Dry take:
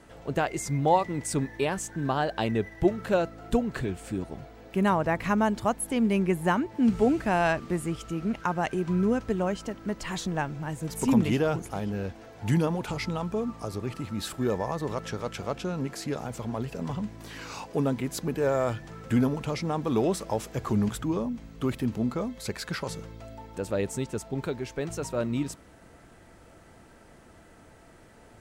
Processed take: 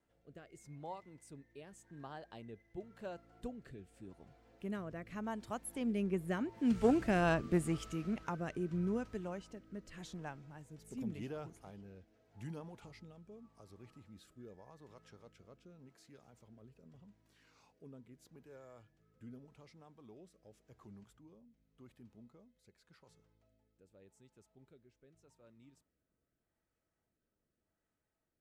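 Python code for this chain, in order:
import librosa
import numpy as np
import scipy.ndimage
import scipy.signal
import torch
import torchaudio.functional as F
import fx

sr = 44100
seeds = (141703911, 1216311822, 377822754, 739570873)

y = fx.doppler_pass(x, sr, speed_mps=9, closest_m=5.6, pass_at_s=7.42)
y = fx.rotary(y, sr, hz=0.85)
y = fx.cheby_harmonics(y, sr, harmonics=(3,), levels_db=(-21,), full_scale_db=-16.5)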